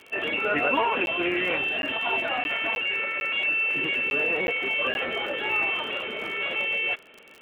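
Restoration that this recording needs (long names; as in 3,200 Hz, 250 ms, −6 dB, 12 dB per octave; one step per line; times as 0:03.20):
click removal
repair the gap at 0:01.06/0:01.82/0:02.44/0:02.75/0:03.20/0:04.10/0:04.47/0:04.94, 11 ms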